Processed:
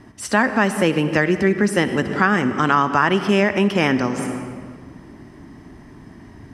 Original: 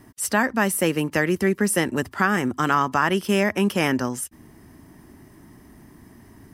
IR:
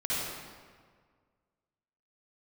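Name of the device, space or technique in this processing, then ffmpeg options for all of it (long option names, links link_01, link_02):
ducked reverb: -filter_complex "[0:a]lowpass=5300,asplit=3[link_01][link_02][link_03];[1:a]atrim=start_sample=2205[link_04];[link_02][link_04]afir=irnorm=-1:irlink=0[link_05];[link_03]apad=whole_len=288014[link_06];[link_05][link_06]sidechaincompress=threshold=-31dB:ratio=3:attack=16:release=169,volume=-9.5dB[link_07];[link_01][link_07]amix=inputs=2:normalize=0,volume=3dB"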